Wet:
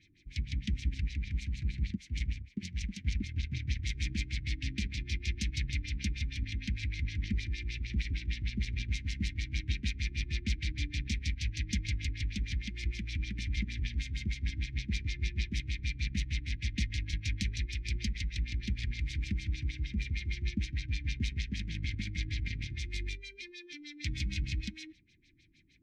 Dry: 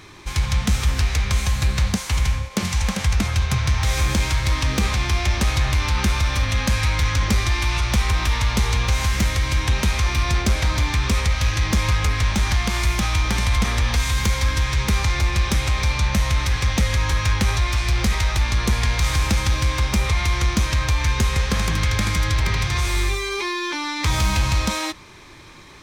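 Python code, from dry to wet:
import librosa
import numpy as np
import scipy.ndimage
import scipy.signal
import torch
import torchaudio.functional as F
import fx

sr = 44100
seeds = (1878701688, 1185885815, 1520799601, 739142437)

y = fx.cheby_harmonics(x, sr, harmonics=(3,), levels_db=(-12,), full_scale_db=-8.5)
y = fx.filter_lfo_lowpass(y, sr, shape='sine', hz=6.5, low_hz=460.0, high_hz=5800.0, q=1.5)
y = scipy.signal.sosfilt(scipy.signal.ellip(3, 1.0, 40, [300.0, 2100.0], 'bandstop', fs=sr, output='sos'), y)
y = F.gain(torch.from_numpy(y), -7.5).numpy()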